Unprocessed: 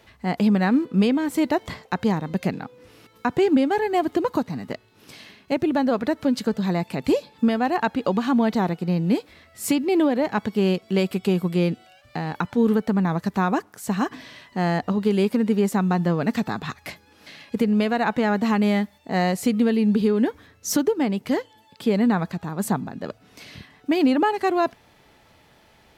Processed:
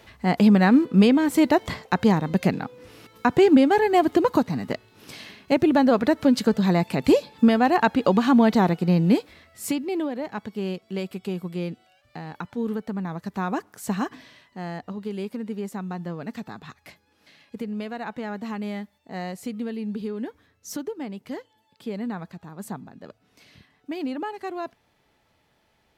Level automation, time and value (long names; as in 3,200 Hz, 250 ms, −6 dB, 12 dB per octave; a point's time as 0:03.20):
0:09.04 +3 dB
0:10.08 −8.5 dB
0:13.19 −8.5 dB
0:13.85 −1 dB
0:14.57 −11 dB